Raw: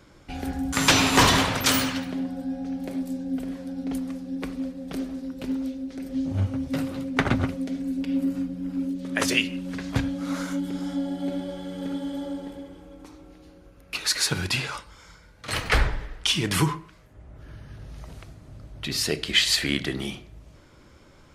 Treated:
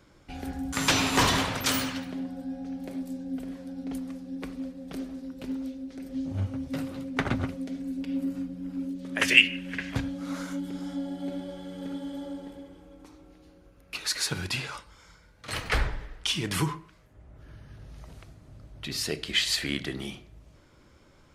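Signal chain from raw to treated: 9.21–9.94 band shelf 2200 Hz +13 dB 1.2 oct; in parallel at -3.5 dB: soft clip -3 dBFS, distortion -17 dB; on the sum: gain -9.5 dB

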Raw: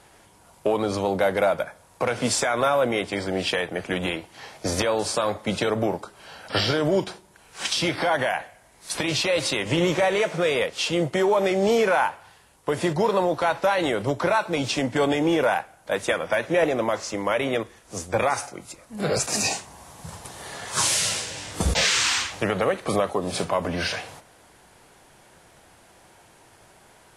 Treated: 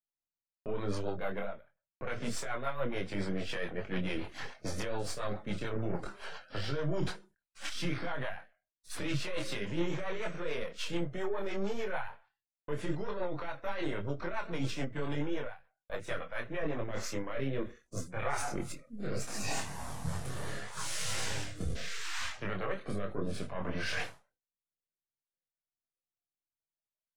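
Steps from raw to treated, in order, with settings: half-wave gain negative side -7 dB; reverse; compressor 16:1, threshold -36 dBFS, peak gain reduction 19 dB; reverse; dynamic EQ 1500 Hz, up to +6 dB, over -55 dBFS, Q 0.98; spectral noise reduction 16 dB; in parallel at -0.5 dB: limiter -29.5 dBFS, peak gain reduction 8 dB; on the sum: chorus voices 6, 0.23 Hz, delay 25 ms, depth 4.8 ms; rotary speaker horn 7 Hz, later 0.7 Hz, at 16.32; gate -59 dBFS, range -42 dB; low shelf 320 Hz +8.5 dB; ending taper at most 180 dB/s

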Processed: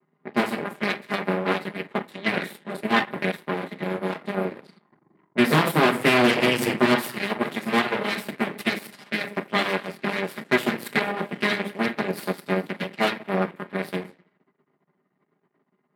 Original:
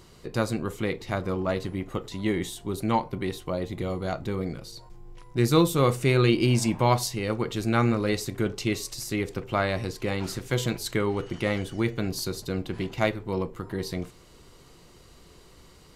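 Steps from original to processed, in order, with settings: minimum comb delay 4.9 ms; thirty-one-band EQ 250 Hz +3 dB, 500 Hz -12 dB, 2000 Hz +10 dB; thinning echo 0.212 s, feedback 61%, level -19.5 dB; shoebox room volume 46 m³, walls mixed, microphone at 0.44 m; added harmonics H 3 -24 dB, 7 -21 dB, 8 -10 dB, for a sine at -5.5 dBFS; HPF 160 Hz 24 dB/oct; low-pass opened by the level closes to 1100 Hz, open at -27 dBFS; bell 6300 Hz -13 dB 0.87 oct

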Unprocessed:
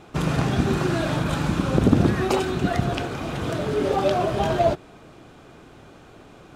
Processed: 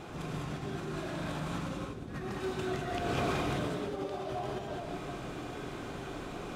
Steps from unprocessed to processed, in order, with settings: negative-ratio compressor -33 dBFS, ratio -1; non-linear reverb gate 0.23 s rising, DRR -3 dB; gain -8 dB

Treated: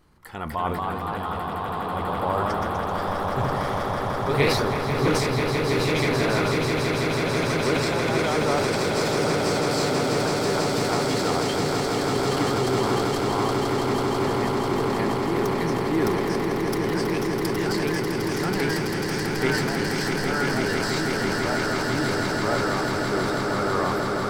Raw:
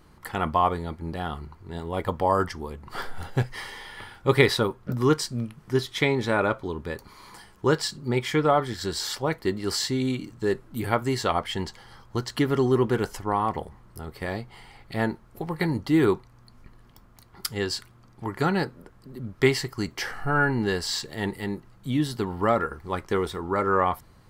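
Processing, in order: echoes that change speed 0.261 s, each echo +1 st, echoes 3; swelling echo 0.164 s, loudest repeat 8, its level -7 dB; transient shaper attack -1 dB, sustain +7 dB; gain -5.5 dB

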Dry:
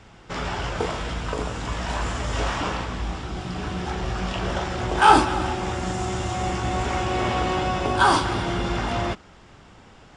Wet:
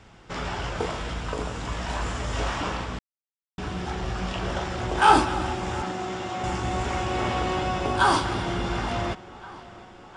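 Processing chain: 5.82–6.44 three-band isolator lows -17 dB, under 160 Hz, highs -13 dB, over 5500 Hz; tape echo 0.712 s, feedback 72%, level -19 dB, low-pass 4500 Hz; 2.99–3.58 mute; gain -2.5 dB

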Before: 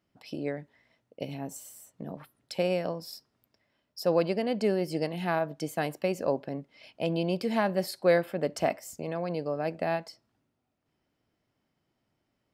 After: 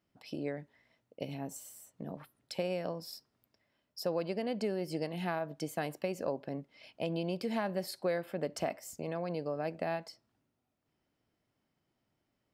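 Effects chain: compressor 3:1, threshold -28 dBFS, peak gain reduction 8 dB; gain -3 dB

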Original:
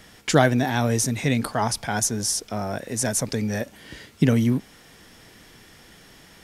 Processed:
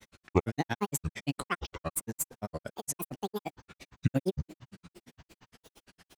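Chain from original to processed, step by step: speed mistake 24 fps film run at 25 fps; spring tank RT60 3.4 s, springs 54 ms, chirp 70 ms, DRR 18.5 dB; grains 61 ms, grains 8.7/s, spray 13 ms, pitch spread up and down by 12 st; gain -4.5 dB

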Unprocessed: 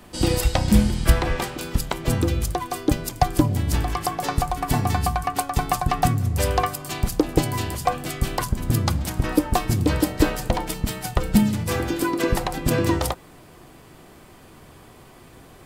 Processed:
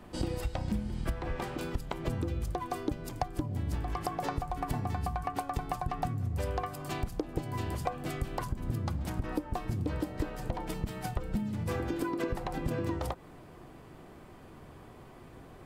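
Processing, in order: high shelf 2700 Hz -11.5 dB; compressor 10:1, threshold -26 dBFS, peak gain reduction 16.5 dB; gain -3 dB

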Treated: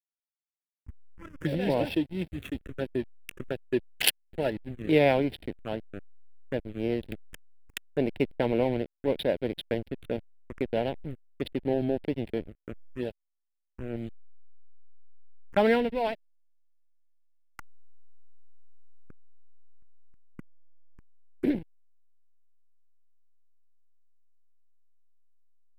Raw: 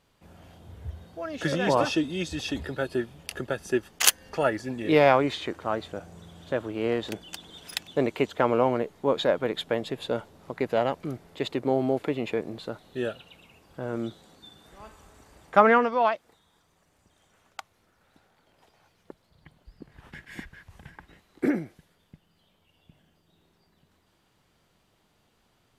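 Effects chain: backlash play -24.5 dBFS; envelope phaser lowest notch 590 Hz, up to 1200 Hz, full sweep at -27.5 dBFS

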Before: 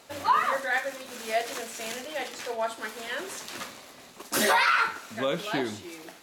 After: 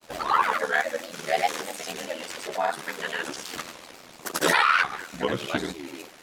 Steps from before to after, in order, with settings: ring modulator 40 Hz; grains, pitch spread up and down by 3 st; gain +6.5 dB

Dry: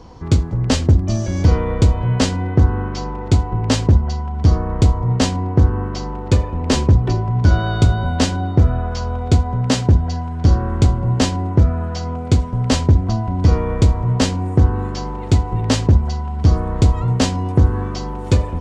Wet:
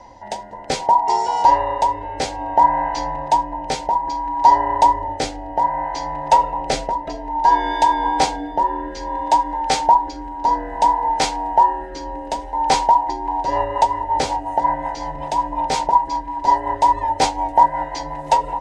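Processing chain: band inversion scrambler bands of 1000 Hz; rotary speaker horn 0.6 Hz, later 5.5 Hz, at 12.79; gain +1 dB

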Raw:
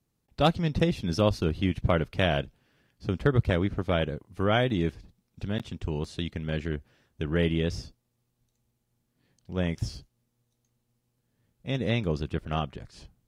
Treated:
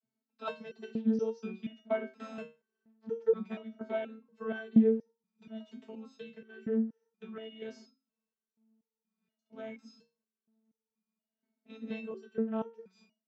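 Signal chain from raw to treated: 2.08–3.1 switching dead time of 0.26 ms; vocoder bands 32, saw 221 Hz; stepped resonator 4.2 Hz 130–460 Hz; gain +8 dB

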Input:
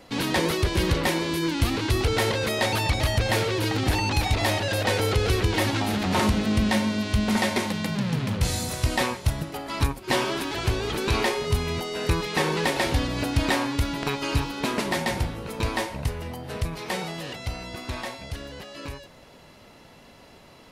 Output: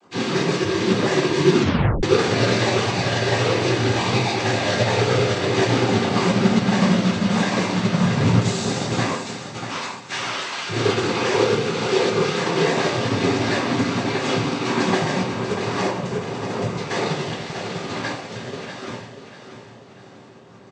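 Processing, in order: level-crossing sampler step -43 dBFS; 9.17–10.68 HPF 1100 Hz 12 dB/oct; limiter -21.5 dBFS, peak gain reduction 10.5 dB; noise vocoder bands 16; feedback echo 0.641 s, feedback 43%, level -7 dB; reverb, pre-delay 3 ms, DRR -4.5 dB; 1.6 tape stop 0.43 s; upward expander 1.5:1, over -35 dBFS; gain +5.5 dB

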